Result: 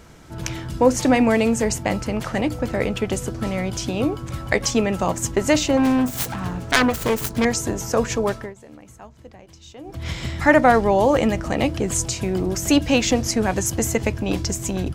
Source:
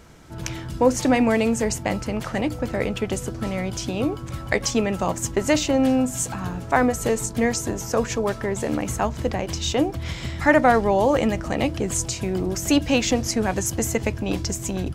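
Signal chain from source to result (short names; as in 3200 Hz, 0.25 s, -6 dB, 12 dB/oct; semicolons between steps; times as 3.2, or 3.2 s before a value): 5.77–7.45 self-modulated delay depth 0.93 ms; 8.28–10.09 dip -21 dB, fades 0.26 s; gain +2 dB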